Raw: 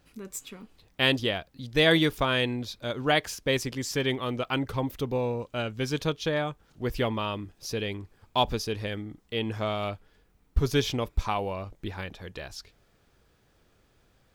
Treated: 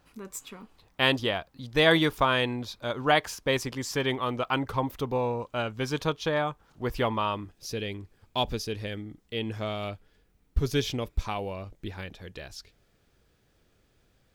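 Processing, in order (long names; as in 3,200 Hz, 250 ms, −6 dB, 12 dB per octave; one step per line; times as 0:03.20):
parametric band 1,000 Hz +7.5 dB 1.1 octaves, from 0:07.51 −4 dB
level −1.5 dB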